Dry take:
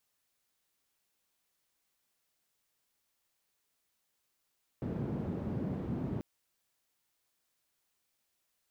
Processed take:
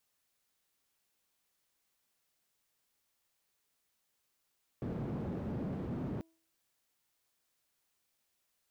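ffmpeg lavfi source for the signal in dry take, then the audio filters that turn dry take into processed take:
-f lavfi -i "anoisesrc=c=white:d=1.39:r=44100:seed=1,highpass=f=120,lowpass=f=190,volume=-7.5dB"
-af "asoftclip=type=hard:threshold=0.0188,bandreject=f=326.4:t=h:w=4,bandreject=f=652.8:t=h:w=4,bandreject=f=979.2:t=h:w=4"

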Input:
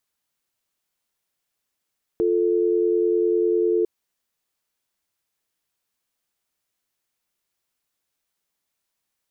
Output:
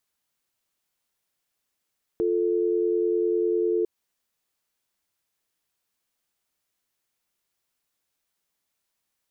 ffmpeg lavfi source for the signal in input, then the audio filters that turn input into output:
-f lavfi -i "aevalsrc='0.1*(sin(2*PI*350*t)+sin(2*PI*440*t))':d=1.65:s=44100"
-af "alimiter=limit=0.133:level=0:latency=1:release=154"

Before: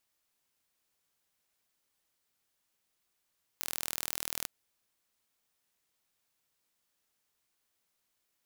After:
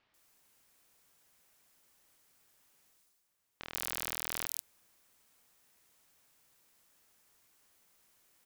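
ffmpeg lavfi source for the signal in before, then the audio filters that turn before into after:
-f lavfi -i "aevalsrc='0.422*eq(mod(n,1092),0)':d=0.85:s=44100"
-filter_complex "[0:a]areverse,acompressor=mode=upward:threshold=0.00141:ratio=2.5,areverse,acrossover=split=3800[s0][s1];[s1]adelay=140[s2];[s0][s2]amix=inputs=2:normalize=0"

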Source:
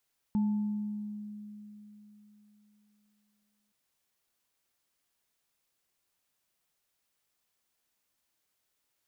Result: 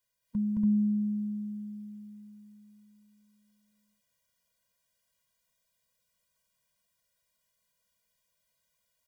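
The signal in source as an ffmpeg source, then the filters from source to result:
-f lavfi -i "aevalsrc='0.0631*pow(10,-3*t/3.64)*sin(2*PI*209*t)+0.00708*pow(10,-3*t/1.23)*sin(2*PI*876*t)':d=3.37:s=44100"
-filter_complex "[0:a]asplit=2[s0][s1];[s1]aecho=0:1:218.7|285.7:1|0.891[s2];[s0][s2]amix=inputs=2:normalize=0,afftfilt=real='re*eq(mod(floor(b*sr/1024/230),2),0)':imag='im*eq(mod(floor(b*sr/1024/230),2),0)':win_size=1024:overlap=0.75"

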